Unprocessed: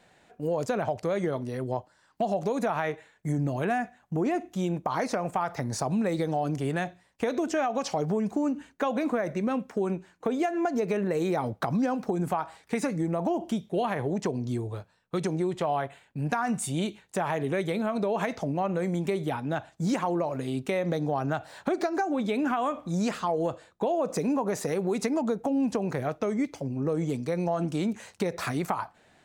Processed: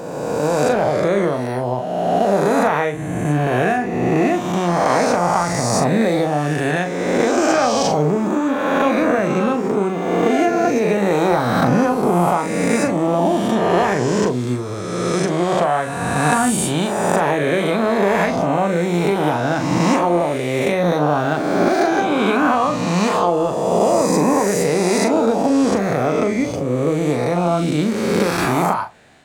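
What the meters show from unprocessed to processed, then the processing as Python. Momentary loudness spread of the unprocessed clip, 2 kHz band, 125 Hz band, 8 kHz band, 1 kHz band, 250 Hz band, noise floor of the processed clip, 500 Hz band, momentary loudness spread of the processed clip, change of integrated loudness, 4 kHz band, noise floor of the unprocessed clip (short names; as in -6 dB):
5 LU, +14.0 dB, +10.0 dB, +15.0 dB, +12.5 dB, +10.5 dB, -24 dBFS, +12.0 dB, 4 LU, +11.5 dB, +14.0 dB, -64 dBFS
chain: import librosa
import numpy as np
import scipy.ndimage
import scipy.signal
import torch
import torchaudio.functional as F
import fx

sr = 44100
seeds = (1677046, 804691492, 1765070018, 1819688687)

y = fx.spec_swells(x, sr, rise_s=2.05)
y = fx.doubler(y, sr, ms=40.0, db=-7.5)
y = y * librosa.db_to_amplitude(6.5)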